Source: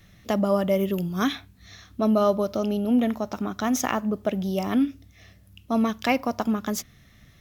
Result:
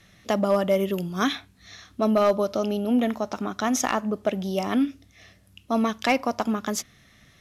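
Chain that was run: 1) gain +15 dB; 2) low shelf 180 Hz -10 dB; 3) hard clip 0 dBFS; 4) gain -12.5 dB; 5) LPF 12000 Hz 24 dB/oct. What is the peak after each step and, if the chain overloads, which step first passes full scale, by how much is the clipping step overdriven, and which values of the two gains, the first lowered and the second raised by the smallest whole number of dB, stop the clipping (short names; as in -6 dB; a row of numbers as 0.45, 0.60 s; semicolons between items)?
+6.5, +6.5, 0.0, -12.5, -12.0 dBFS; step 1, 6.5 dB; step 1 +8 dB, step 4 -5.5 dB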